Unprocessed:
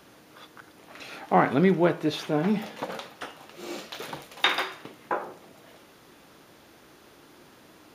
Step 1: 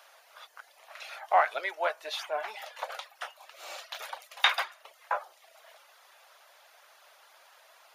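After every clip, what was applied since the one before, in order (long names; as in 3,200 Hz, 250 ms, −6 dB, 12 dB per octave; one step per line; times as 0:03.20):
reverb reduction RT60 0.55 s
elliptic high-pass filter 610 Hz, stop band 80 dB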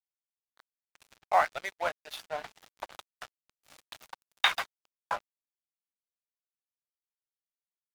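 dead-zone distortion −37 dBFS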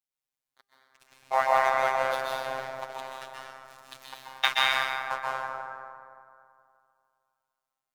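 dense smooth reverb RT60 2.4 s, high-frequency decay 0.45×, pre-delay 115 ms, DRR −5.5 dB
phases set to zero 132 Hz
tuned comb filter 200 Hz, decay 1.5 s, mix 40%
level +6 dB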